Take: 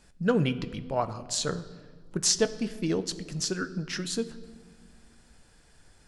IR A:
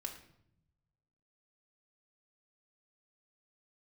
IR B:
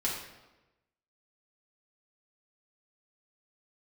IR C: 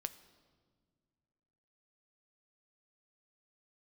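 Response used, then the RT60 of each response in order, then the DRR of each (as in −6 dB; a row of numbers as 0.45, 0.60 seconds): C; 0.75 s, 1.1 s, non-exponential decay; 1.5, −6.5, 11.0 decibels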